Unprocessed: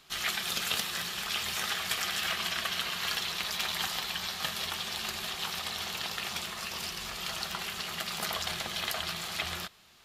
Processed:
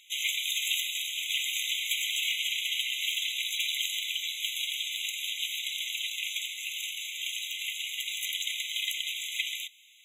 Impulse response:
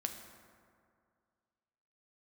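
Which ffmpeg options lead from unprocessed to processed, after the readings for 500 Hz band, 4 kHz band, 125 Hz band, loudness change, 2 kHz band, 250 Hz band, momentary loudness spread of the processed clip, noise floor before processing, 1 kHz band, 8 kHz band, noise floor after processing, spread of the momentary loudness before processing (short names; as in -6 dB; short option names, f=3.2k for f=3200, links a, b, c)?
under -40 dB, +3.0 dB, under -40 dB, +2.5 dB, +1.5 dB, under -40 dB, 5 LU, -41 dBFS, under -40 dB, +3.0 dB, -40 dBFS, 5 LU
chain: -af "volume=24.5dB,asoftclip=hard,volume=-24.5dB,afftfilt=real='re*eq(mod(floor(b*sr/1024/2000),2),1)':imag='im*eq(mod(floor(b*sr/1024/2000),2),1)':win_size=1024:overlap=0.75,volume=5dB"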